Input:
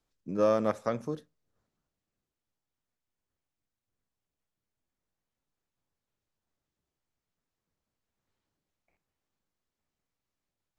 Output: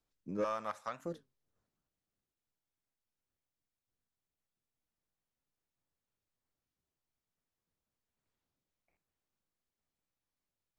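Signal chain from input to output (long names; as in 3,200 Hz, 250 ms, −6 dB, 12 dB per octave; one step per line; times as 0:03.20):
0:00.44–0:01.07: low shelf with overshoot 620 Hz −13.5 dB, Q 1.5
soft clipping −21 dBFS, distortion −16 dB
wow of a warped record 33 1/3 rpm, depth 250 cents
level −5 dB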